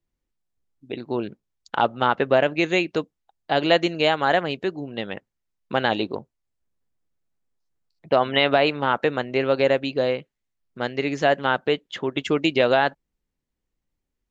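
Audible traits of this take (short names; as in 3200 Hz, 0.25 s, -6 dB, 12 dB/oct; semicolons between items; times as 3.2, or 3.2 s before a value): noise floor -82 dBFS; spectral tilt -2.5 dB/oct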